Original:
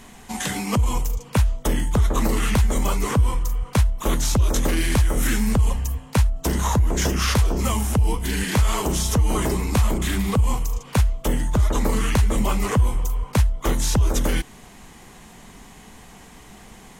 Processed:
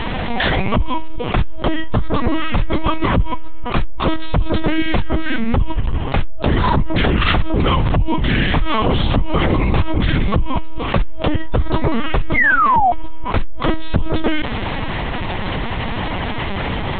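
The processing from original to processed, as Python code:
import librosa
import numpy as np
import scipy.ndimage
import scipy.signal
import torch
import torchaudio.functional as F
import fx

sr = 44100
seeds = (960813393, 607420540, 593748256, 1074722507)

y = fx.spec_paint(x, sr, seeds[0], shape='fall', start_s=12.35, length_s=0.56, low_hz=680.0, high_hz=2200.0, level_db=-16.0)
y = fx.lpc_vocoder(y, sr, seeds[1], excitation='pitch_kept', order=10)
y = fx.env_flatten(y, sr, amount_pct=70)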